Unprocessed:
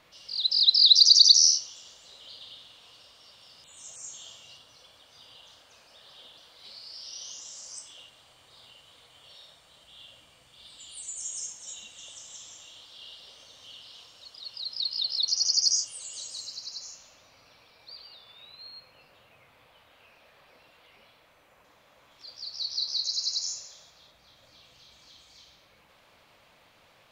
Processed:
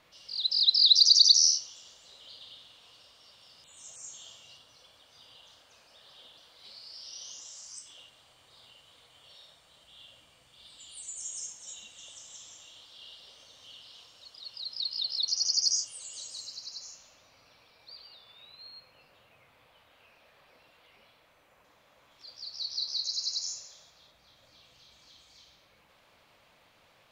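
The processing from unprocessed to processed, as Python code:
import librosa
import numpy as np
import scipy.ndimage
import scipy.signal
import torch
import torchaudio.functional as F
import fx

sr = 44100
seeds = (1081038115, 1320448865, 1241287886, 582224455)

y = fx.peak_eq(x, sr, hz=fx.line((7.45, 190.0), (7.85, 890.0)), db=-14.5, octaves=0.68, at=(7.45, 7.85), fade=0.02)
y = y * librosa.db_to_amplitude(-3.0)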